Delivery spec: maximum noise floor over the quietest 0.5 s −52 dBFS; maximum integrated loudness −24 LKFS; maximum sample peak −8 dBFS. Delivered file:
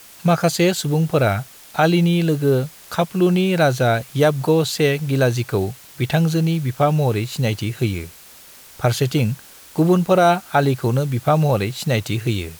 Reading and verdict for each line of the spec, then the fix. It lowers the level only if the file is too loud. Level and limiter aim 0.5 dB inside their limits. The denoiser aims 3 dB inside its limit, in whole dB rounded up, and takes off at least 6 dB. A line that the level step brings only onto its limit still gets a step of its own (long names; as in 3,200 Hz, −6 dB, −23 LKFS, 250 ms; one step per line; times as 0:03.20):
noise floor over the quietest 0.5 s −44 dBFS: out of spec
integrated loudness −19.0 LKFS: out of spec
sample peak −5.0 dBFS: out of spec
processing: broadband denoise 6 dB, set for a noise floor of −44 dBFS
level −5.5 dB